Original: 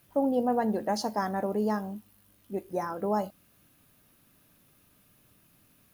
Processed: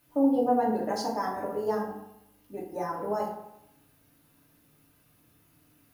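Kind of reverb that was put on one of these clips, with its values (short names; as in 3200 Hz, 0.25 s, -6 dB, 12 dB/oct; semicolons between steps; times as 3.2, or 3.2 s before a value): FDN reverb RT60 0.83 s, low-frequency decay 0.9×, high-frequency decay 0.5×, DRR -4 dB; gain -5.5 dB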